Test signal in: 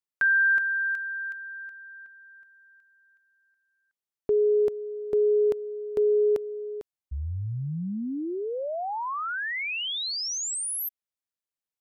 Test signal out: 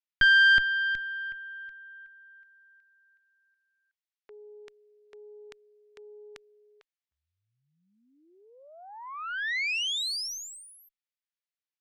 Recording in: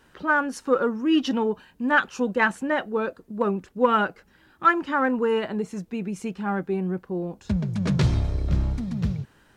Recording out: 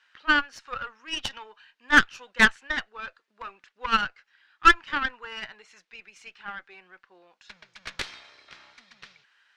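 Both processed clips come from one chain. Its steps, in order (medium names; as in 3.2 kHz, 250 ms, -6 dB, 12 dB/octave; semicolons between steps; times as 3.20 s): Butterworth band-pass 3.1 kHz, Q 0.76; Chebyshev shaper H 4 -13 dB, 7 -22 dB, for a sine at -12 dBFS; treble shelf 3.8 kHz -7 dB; trim +9 dB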